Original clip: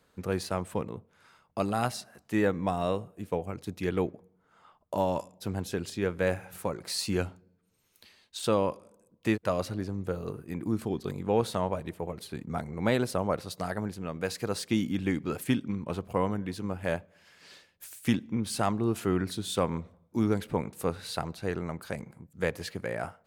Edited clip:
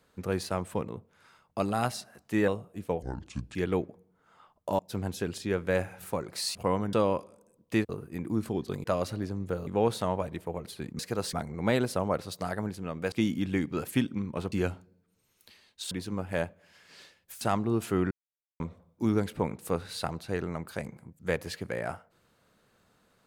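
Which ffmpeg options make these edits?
-filter_complex "[0:a]asplit=18[s0][s1][s2][s3][s4][s5][s6][s7][s8][s9][s10][s11][s12][s13][s14][s15][s16][s17];[s0]atrim=end=2.482[s18];[s1]atrim=start=2.908:end=3.454[s19];[s2]atrim=start=3.45:end=3.8,asetpts=PTS-STARTPTS,asetrate=29106,aresample=44100,atrim=end_sample=23386,asetpts=PTS-STARTPTS[s20];[s3]atrim=start=3.796:end=5.042[s21];[s4]atrim=start=5.308:end=7.072[s22];[s5]atrim=start=16.048:end=16.432[s23];[s6]atrim=start=8.458:end=9.422[s24];[s7]atrim=start=10.248:end=11.202[s25];[s8]atrim=start=9.418:end=10.252[s26];[s9]atrim=start=11.198:end=12.522[s27];[s10]atrim=start=14.308:end=14.652[s28];[s11]atrim=start=12.518:end=14.312[s29];[s12]atrim=start=14.648:end=16.052[s30];[s13]atrim=start=7.068:end=8.462[s31];[s14]atrim=start=16.428:end=17.932[s32];[s15]atrim=start=18.548:end=19.25,asetpts=PTS-STARTPTS,afade=t=out:st=0.698:d=0.004:c=hsin[s33];[s16]atrim=start=19.25:end=19.74,asetpts=PTS-STARTPTS,volume=0[s34];[s17]atrim=start=19.74,asetpts=PTS-STARTPTS,afade=t=in:d=0.004:c=hsin[s35];[s18][s19]acrossfade=d=0.004:c1=hsin:c2=hsin[s36];[s36][s20]acrossfade=d=0.004:c1=hsin:c2=hsin[s37];[s37][s21]acrossfade=d=0.004:c1=hsin:c2=hsin[s38];[s38][s22]acrossfade=d=0.004:c1=hsin:c2=hsin[s39];[s39][s23]acrossfade=d=0.004:c1=hsin:c2=hsin[s40];[s40][s24]acrossfade=d=0.004:c1=hsin:c2=hsin[s41];[s41][s25]acrossfade=d=0.004:c1=hsin:c2=hsin[s42];[s42][s26]acrossfade=d=0.004:c1=hsin:c2=hsin[s43];[s43][s27]acrossfade=d=0.004:c1=hsin:c2=hsin[s44];[s44][s28]acrossfade=d=0.004:c1=hsin:c2=hsin[s45];[s45][s29]acrossfade=d=0.004:c1=hsin:c2=hsin[s46];[s46][s30]acrossfade=d=0.004:c1=hsin:c2=hsin[s47];[s47][s31]acrossfade=d=0.004:c1=hsin:c2=hsin[s48];[s48][s32]acrossfade=d=0.004:c1=hsin:c2=hsin[s49];[s33][s34][s35]concat=n=3:v=0:a=1[s50];[s49][s50]acrossfade=d=0.004:c1=hsin:c2=hsin"

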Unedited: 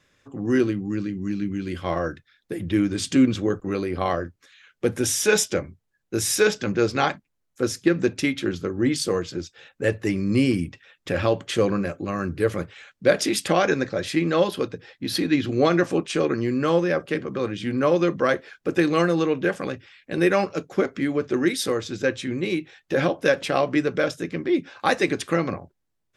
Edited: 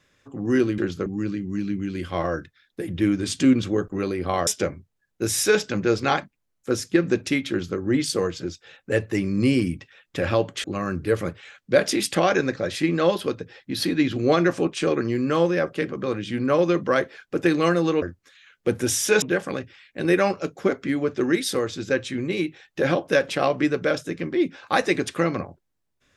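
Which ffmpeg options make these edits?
-filter_complex "[0:a]asplit=7[s0][s1][s2][s3][s4][s5][s6];[s0]atrim=end=0.782[s7];[s1]atrim=start=8.418:end=8.702[s8];[s2]atrim=start=0.778:end=4.192[s9];[s3]atrim=start=5.388:end=11.562[s10];[s4]atrim=start=11.968:end=19.352[s11];[s5]atrim=start=4.188:end=5.392[s12];[s6]atrim=start=19.348[s13];[s7][s8]acrossfade=d=0.004:c1=hsin:c2=hsin[s14];[s14][s9]acrossfade=d=0.004:c1=hsin:c2=hsin[s15];[s15][s10]acrossfade=d=0.004:c1=hsin:c2=hsin[s16];[s16][s11]acrossfade=d=0.004:c1=hsin:c2=hsin[s17];[s17][s12]acrossfade=d=0.004:c1=hsin:c2=hsin[s18];[s18][s13]acrossfade=d=0.004:c1=hsin:c2=hsin"

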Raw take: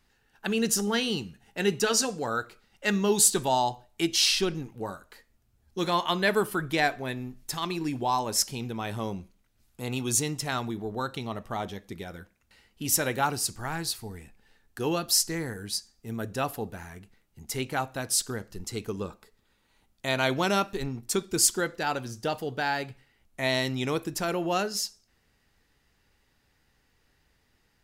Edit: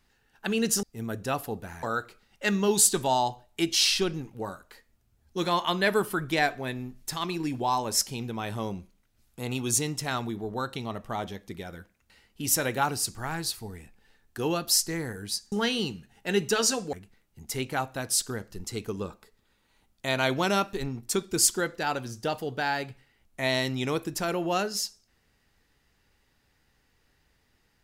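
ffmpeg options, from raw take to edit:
-filter_complex "[0:a]asplit=5[s0][s1][s2][s3][s4];[s0]atrim=end=0.832[s5];[s1]atrim=start=15.928:end=16.932[s6];[s2]atrim=start=2.238:end=15.932[s7];[s3]atrim=start=0.828:end=2.242[s8];[s4]atrim=start=16.928[s9];[s5][s6]acrossfade=d=0.004:c1=hsin:c2=hsin[s10];[s10][s7]acrossfade=d=0.004:c1=hsin:c2=hsin[s11];[s11][s8]acrossfade=d=0.004:c1=hsin:c2=hsin[s12];[s12][s9]acrossfade=d=0.004:c1=hsin:c2=hsin"

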